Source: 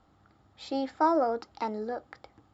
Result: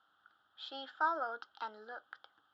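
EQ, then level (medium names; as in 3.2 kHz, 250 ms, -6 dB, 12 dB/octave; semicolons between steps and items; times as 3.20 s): two resonant band-passes 2.2 kHz, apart 1.1 oct; distance through air 64 m; +6.5 dB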